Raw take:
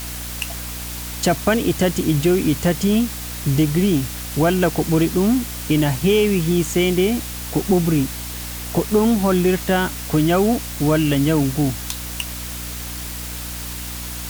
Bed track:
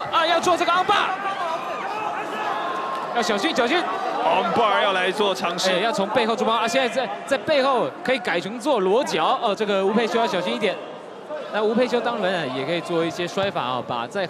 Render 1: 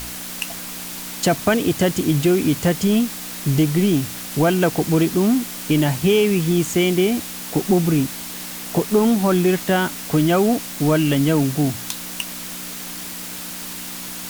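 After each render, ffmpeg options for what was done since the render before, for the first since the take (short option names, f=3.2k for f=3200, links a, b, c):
-af "bandreject=f=60:t=h:w=4,bandreject=f=120:t=h:w=4"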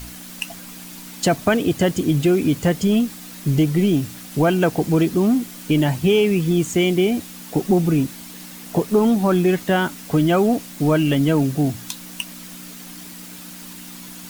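-af "afftdn=nr=8:nf=-32"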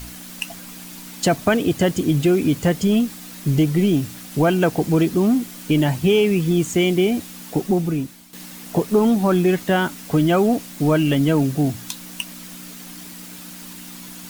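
-filter_complex "[0:a]asplit=2[a][b];[a]atrim=end=8.33,asetpts=PTS-STARTPTS,afade=t=out:st=7.47:d=0.86:silence=0.251189[c];[b]atrim=start=8.33,asetpts=PTS-STARTPTS,afade=t=in:d=0.004:c=hsin:silence=0.251189[d];[c][d]concat=n=2:v=0:a=1"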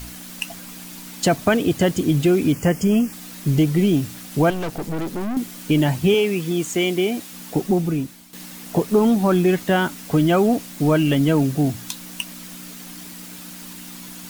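-filter_complex "[0:a]asettb=1/sr,asplit=3[a][b][c];[a]atrim=end=2.524[d];[b]atrim=start=2.52:end=3.13,asetpts=PTS-STARTPTS,afade=t=in:d=0.004:c=qsin,afade=t=out:st=0.606:d=0.004:c=qsin,asuperstop=centerf=3800:order=4:qfactor=2.2[e];[c]atrim=start=3.126[f];[d][e]acrossfade=d=0.004:c1=hsin:c2=qsin[g];[g][f]acrossfade=d=0.004:c1=qsin:c2=hsin,asettb=1/sr,asplit=3[h][i][j];[h]atrim=end=4.504[k];[i]atrim=start=4.5:end=5.37,asetpts=PTS-STARTPTS,afade=t=in:d=0.004:c=qsin,afade=t=out:st=0.866:d=0.004:c=qsin,aeval=exprs='(tanh(15.8*val(0)+0.55)-tanh(0.55))/15.8':c=same[l];[j]atrim=start=5.366[m];[k][l]acrossfade=d=0.004:c1=hsin:c2=qsin[n];[n][m]acrossfade=d=0.004:c1=qsin:c2=hsin,asettb=1/sr,asplit=3[o][p][q];[o]atrim=end=6.144[r];[p]atrim=start=6.14:end=7.33,asetpts=PTS-STARTPTS,afade=t=in:d=0.004:c=qsin,afade=t=out:st=1.186:d=0.004:c=qsin,highpass=f=320:p=1[s];[q]atrim=start=7.326[t];[r][s]acrossfade=d=0.004:c1=hsin:c2=qsin[u];[u][t]acrossfade=d=0.004:c1=qsin:c2=hsin"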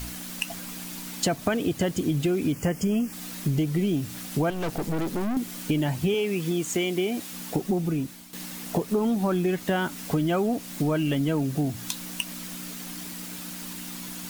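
-af "acompressor=threshold=-24dB:ratio=3"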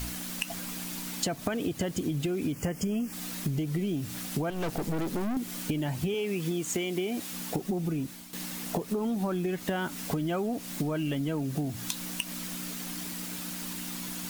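-af "acompressor=threshold=-27dB:ratio=6"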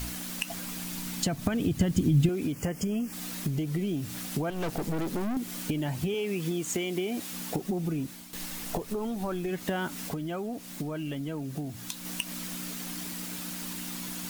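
-filter_complex "[0:a]asettb=1/sr,asplit=3[a][b][c];[a]atrim=end=0.604[d];[b]atrim=start=0.6:end=2.29,asetpts=PTS-STARTPTS,afade=t=in:d=0.004:c=qsin,afade=t=out:st=1.686:d=0.004:c=qsin,asubboost=boost=9:cutoff=230[e];[c]atrim=start=2.286[f];[d][e]acrossfade=d=0.004:c1=hsin:c2=qsin[g];[g][f]acrossfade=d=0.004:c1=qsin:c2=hsin,asplit=3[h][i][j];[h]afade=t=out:st=8.32:d=0.02[k];[i]asubboost=boost=7:cutoff=64,afade=t=in:st=8.32:d=0.02,afade=t=out:st=9.5:d=0.02[l];[j]afade=t=in:st=9.5:d=0.02[m];[k][l][m]amix=inputs=3:normalize=0,asplit=3[n][o][p];[n]atrim=end=10.092[q];[o]atrim=start=10.088:end=12.052,asetpts=PTS-STARTPTS,volume=-4dB[r];[p]atrim=start=12.048[s];[q][r]acrossfade=d=0.004:c1=hsin:c2=hsin[t];[t][s]acrossfade=d=0.004:c1=hsin:c2=hsin"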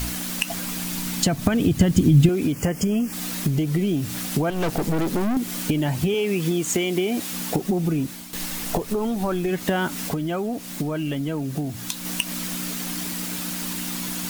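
-af "volume=8dB"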